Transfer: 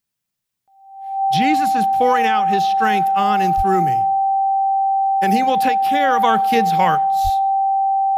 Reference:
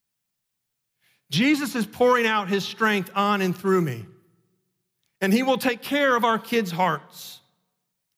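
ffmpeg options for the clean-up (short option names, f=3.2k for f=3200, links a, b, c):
-filter_complex "[0:a]bandreject=f=780:w=30,asplit=3[a][b][c];[a]afade=t=out:st=3.56:d=0.02[d];[b]highpass=f=140:w=0.5412,highpass=f=140:w=1.3066,afade=t=in:st=3.56:d=0.02,afade=t=out:st=3.68:d=0.02[e];[c]afade=t=in:st=3.68:d=0.02[f];[d][e][f]amix=inputs=3:normalize=0,asplit=3[g][h][i];[g]afade=t=out:st=7.23:d=0.02[j];[h]highpass=f=140:w=0.5412,highpass=f=140:w=1.3066,afade=t=in:st=7.23:d=0.02,afade=t=out:st=7.35:d=0.02[k];[i]afade=t=in:st=7.35:d=0.02[l];[j][k][l]amix=inputs=3:normalize=0,asetnsamples=n=441:p=0,asendcmd='6.24 volume volume -3.5dB',volume=0dB"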